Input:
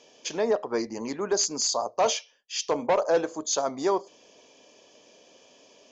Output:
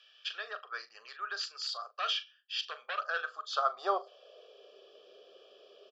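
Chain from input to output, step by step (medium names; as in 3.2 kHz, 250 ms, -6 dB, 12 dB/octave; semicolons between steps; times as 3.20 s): graphic EQ with 31 bands 400 Hz +6 dB, 1.25 kHz +10 dB, 3.15 kHz +4 dB; high-pass sweep 1.8 kHz -> 340 Hz, 3.01–4.80 s; static phaser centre 1.4 kHz, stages 8; doubling 40 ms -13.5 dB; trim -4.5 dB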